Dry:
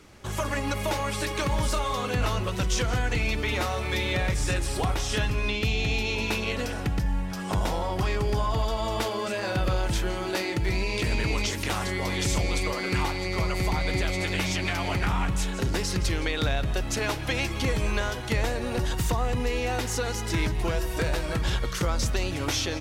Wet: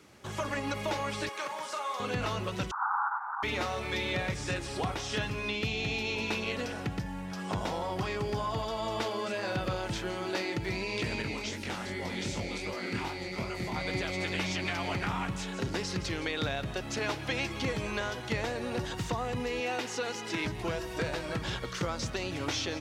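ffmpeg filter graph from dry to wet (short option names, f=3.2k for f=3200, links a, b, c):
-filter_complex "[0:a]asettb=1/sr,asplit=3[a][b][c];[a]atrim=end=1.294[d];[b]atrim=start=1.29:end=2,asetpts=PTS-STARTPTS,afade=t=in:d=0.004:c=qsin,afade=t=out:st=0.706:d=0.004:c=qsin,highpass=660,equalizer=f=3.7k:t=o:w=1.4:g=-5.5,asplit=2[e][f];[f]adelay=42,volume=-8dB[g];[e][g]amix=inputs=2:normalize=0,atrim=end_sample=31311[h];[c]atrim=start=1.996[i];[d][h]acrossfade=d=0.004:c1=hsin:c2=qsin[j];[j][i]acrossfade=d=0.004:c1=qsin:c2=hsin,asettb=1/sr,asplit=3[k][l][m];[k]atrim=end=2.714[n];[l]atrim=start=2.71:end=3.43,asetpts=PTS-STARTPTS,afade=t=in:d=0.004:c=qsin,afade=t=out:st=0.716:d=0.004:c=qsin,aeval=exprs='0.178*sin(PI/2*5.01*val(0)/0.178)':c=same,asuperpass=centerf=1100:order=12:qfactor=1.7[o];[m]atrim=start=3.426[p];[n][o]acrossfade=d=0.004:c1=hsin:c2=qsin[q];[q][p]acrossfade=d=0.004:c1=qsin:c2=hsin,asettb=1/sr,asplit=3[r][s][t];[r]atrim=end=11.224[u];[s]atrim=start=11.22:end=13.76,asetpts=PTS-STARTPTS,afade=t=in:d=0.004:c=qsin,afade=t=out:st=2.536:d=0.004:c=qsin,equalizer=f=230:w=6.7:g=8,bandreject=f=1.1k:w=12,flanger=delay=19:depth=7.5:speed=2.6[v];[t]atrim=start=13.756[w];[u][v]acrossfade=d=0.004:c1=hsin:c2=qsin[x];[x][w]acrossfade=d=0.004:c1=qsin:c2=hsin,asettb=1/sr,asplit=3[y][z][aa];[y]atrim=end=19.604[ab];[z]atrim=start=19.6:end=20.45,asetpts=PTS-STARTPTS,afade=t=in:d=0.004:c=qsin,afade=t=out:st=0.846:d=0.004:c=qsin,highpass=200,equalizer=f=2.7k:w=3.6:g=4[ac];[aa]atrim=start=20.446[ad];[ab][ac]acrossfade=d=0.004:c1=hsin:c2=qsin[ae];[ae][ad]acrossfade=d=0.004:c1=qsin:c2=hsin,highpass=110,acrossover=split=6900[af][ag];[ag]acompressor=threshold=-55dB:ratio=4:attack=1:release=60[ah];[af][ah]amix=inputs=2:normalize=0,volume=-4dB"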